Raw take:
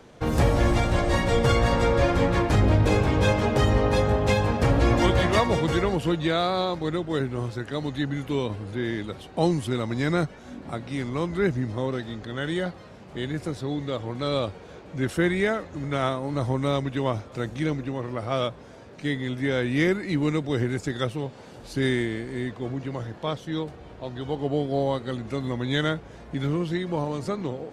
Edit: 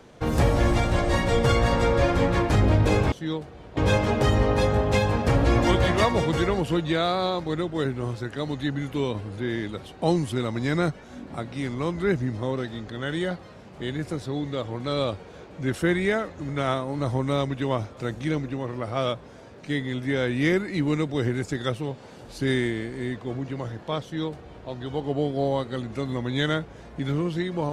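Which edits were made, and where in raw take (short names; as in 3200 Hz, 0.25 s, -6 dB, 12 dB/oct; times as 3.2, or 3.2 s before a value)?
23.38–24.03 copy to 3.12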